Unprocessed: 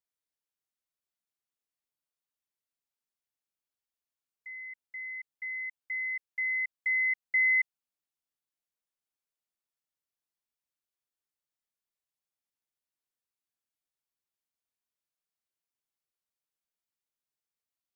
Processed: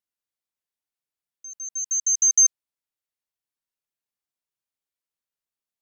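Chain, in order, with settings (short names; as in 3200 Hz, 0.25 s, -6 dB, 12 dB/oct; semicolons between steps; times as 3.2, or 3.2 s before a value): dynamic EQ 1900 Hz, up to +6 dB, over -40 dBFS, Q 0.87; wide varispeed 3.09×; gain +4.5 dB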